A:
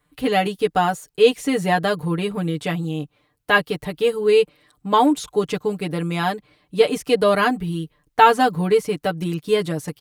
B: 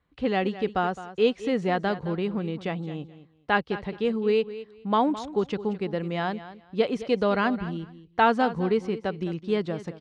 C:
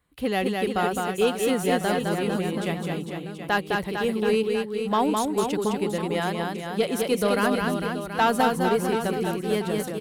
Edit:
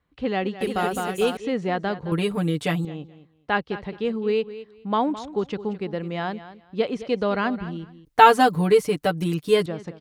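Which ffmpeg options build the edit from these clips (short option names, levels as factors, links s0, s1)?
-filter_complex "[0:a]asplit=2[s0][s1];[1:a]asplit=4[s2][s3][s4][s5];[s2]atrim=end=0.612[s6];[2:a]atrim=start=0.608:end=1.372[s7];[s3]atrim=start=1.368:end=2.122[s8];[s0]atrim=start=2.118:end=2.852[s9];[s4]atrim=start=2.848:end=8.052[s10];[s1]atrim=start=8.048:end=9.662[s11];[s5]atrim=start=9.658[s12];[s6][s7]acrossfade=d=0.004:c1=hsin:c2=hsin[s13];[s13][s8]acrossfade=d=0.004:c1=hsin:c2=hsin[s14];[s14][s9]acrossfade=d=0.004:c1=hsin:c2=hsin[s15];[s15][s10]acrossfade=d=0.004:c1=hsin:c2=hsin[s16];[s16][s11]acrossfade=d=0.004:c1=hsin:c2=hsin[s17];[s17][s12]acrossfade=d=0.004:c1=hsin:c2=hsin"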